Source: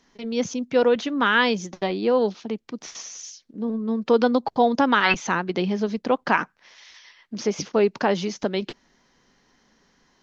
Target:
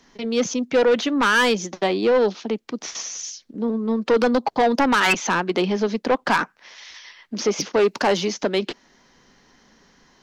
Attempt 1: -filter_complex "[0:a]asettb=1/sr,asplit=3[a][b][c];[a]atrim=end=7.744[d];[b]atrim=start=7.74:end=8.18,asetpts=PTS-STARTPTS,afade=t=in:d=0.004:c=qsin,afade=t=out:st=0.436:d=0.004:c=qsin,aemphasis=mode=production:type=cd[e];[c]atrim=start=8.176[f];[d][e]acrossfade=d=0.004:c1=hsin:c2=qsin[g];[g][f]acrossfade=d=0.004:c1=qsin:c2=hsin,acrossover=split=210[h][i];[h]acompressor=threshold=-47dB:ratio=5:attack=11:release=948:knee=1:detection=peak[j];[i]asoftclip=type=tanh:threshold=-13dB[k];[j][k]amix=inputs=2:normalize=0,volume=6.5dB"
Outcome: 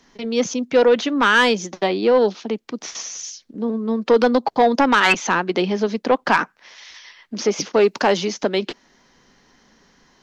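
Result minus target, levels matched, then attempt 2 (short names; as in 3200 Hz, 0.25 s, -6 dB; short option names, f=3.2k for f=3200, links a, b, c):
soft clip: distortion -6 dB
-filter_complex "[0:a]asettb=1/sr,asplit=3[a][b][c];[a]atrim=end=7.744[d];[b]atrim=start=7.74:end=8.18,asetpts=PTS-STARTPTS,afade=t=in:d=0.004:c=qsin,afade=t=out:st=0.436:d=0.004:c=qsin,aemphasis=mode=production:type=cd[e];[c]atrim=start=8.176[f];[d][e]acrossfade=d=0.004:c1=hsin:c2=qsin[g];[g][f]acrossfade=d=0.004:c1=qsin:c2=hsin,acrossover=split=210[h][i];[h]acompressor=threshold=-47dB:ratio=5:attack=11:release=948:knee=1:detection=peak[j];[i]asoftclip=type=tanh:threshold=-19dB[k];[j][k]amix=inputs=2:normalize=0,volume=6.5dB"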